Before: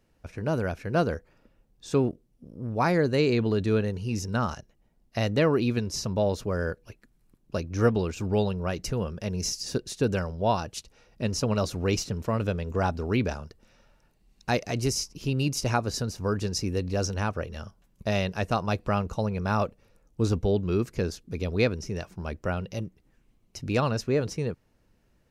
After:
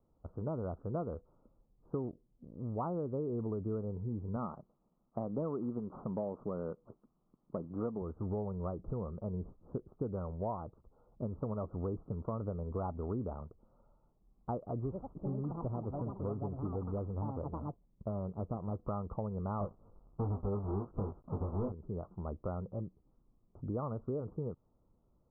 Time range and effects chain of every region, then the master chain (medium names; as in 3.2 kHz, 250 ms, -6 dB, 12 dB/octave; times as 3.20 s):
4.36–8.02 s: CVSD coder 32 kbps + resonant low shelf 120 Hz -10 dB, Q 1.5
14.82–18.84 s: median filter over 41 samples + ever faster or slower copies 102 ms, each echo +6 st, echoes 2, each echo -6 dB
19.61–21.72 s: square wave that keeps the level + doubling 20 ms -4 dB
whole clip: de-esser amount 70%; steep low-pass 1.3 kHz 96 dB/octave; compression 6:1, threshold -28 dBFS; trim -5.5 dB